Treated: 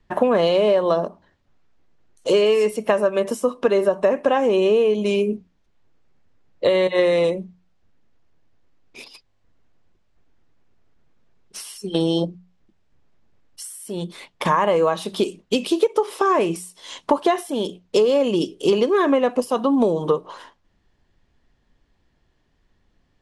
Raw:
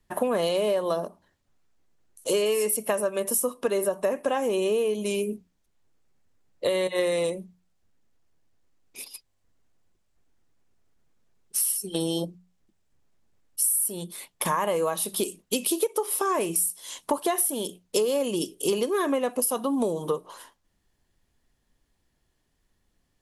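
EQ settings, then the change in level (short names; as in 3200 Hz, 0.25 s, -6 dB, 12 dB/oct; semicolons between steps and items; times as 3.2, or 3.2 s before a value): air absorption 140 m; +8.0 dB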